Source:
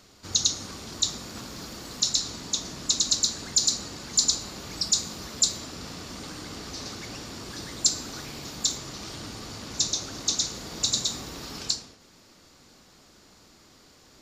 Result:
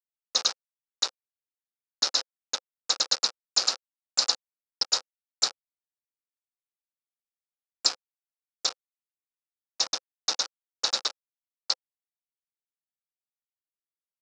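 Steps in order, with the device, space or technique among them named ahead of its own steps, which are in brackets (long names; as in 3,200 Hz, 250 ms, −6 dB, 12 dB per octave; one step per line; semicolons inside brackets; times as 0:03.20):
hand-held game console (bit reduction 4 bits; loudspeaker in its box 430–5,500 Hz, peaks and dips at 520 Hz +7 dB, 800 Hz +5 dB, 1,300 Hz +6 dB, 2,100 Hz −5 dB, 3,200 Hz −4 dB, 5,100 Hz +5 dB)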